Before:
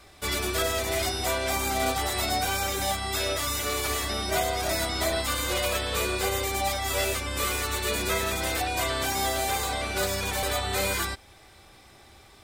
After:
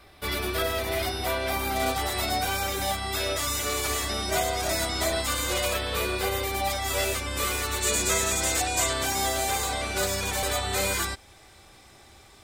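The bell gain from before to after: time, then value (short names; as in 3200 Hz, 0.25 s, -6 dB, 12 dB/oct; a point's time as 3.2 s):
bell 7200 Hz 0.65 oct
-11 dB
from 1.76 s -3 dB
from 3.36 s +3 dB
from 5.74 s -5.5 dB
from 6.7 s +1 dB
from 7.81 s +12.5 dB
from 8.93 s +4 dB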